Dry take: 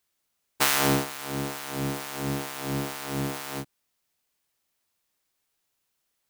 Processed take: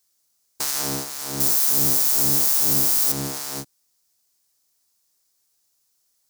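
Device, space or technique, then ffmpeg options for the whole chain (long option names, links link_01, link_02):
over-bright horn tweeter: -filter_complex "[0:a]highshelf=frequency=3900:width_type=q:width=1.5:gain=9,alimiter=limit=-7.5dB:level=0:latency=1:release=332,asettb=1/sr,asplit=3[link_01][link_02][link_03];[link_01]atrim=end=1.404[link_04];[link_02]atrim=start=1.4:end=3.12,asetpts=PTS-STARTPTS,afade=type=in:duration=0.004:curve=qsin,afade=type=out:start_time=1.716:duration=0.004:curve=qsin,aemphasis=mode=production:type=50kf[link_05];[link_03]atrim=start=3.116[link_06];[link_04][link_05]acrossfade=duration=0.004:curve1=hsin:curve2=qsin[link_07];[link_07][link_06]acrossfade=duration=0.004:curve1=qsin:curve2=hsin"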